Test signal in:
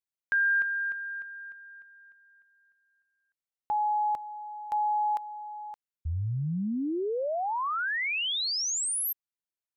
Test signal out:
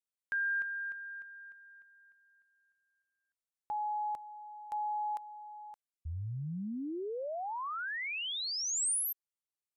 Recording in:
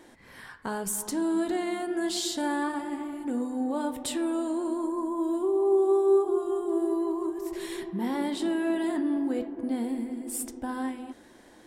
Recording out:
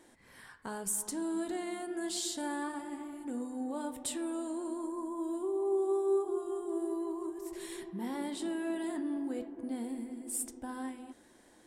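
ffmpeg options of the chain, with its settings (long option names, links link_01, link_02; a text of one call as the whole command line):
ffmpeg -i in.wav -af "equalizer=frequency=8800:width=1.2:gain=7,volume=-8dB" out.wav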